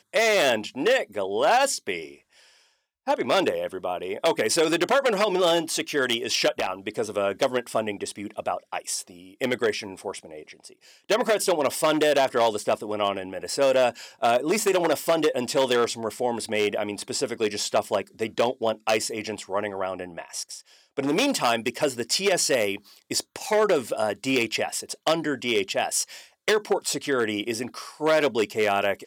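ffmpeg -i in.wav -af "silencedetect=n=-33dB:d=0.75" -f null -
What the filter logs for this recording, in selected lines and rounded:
silence_start: 2.06
silence_end: 3.07 | silence_duration: 1.02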